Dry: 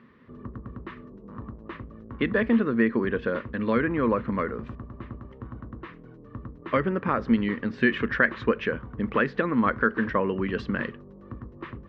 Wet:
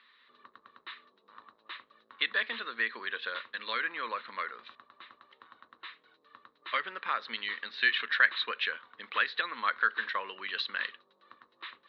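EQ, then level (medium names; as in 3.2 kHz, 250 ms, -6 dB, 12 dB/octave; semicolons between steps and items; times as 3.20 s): high-pass 1.3 kHz 12 dB/octave; resonant low-pass 3.9 kHz, resonance Q 11; -1.5 dB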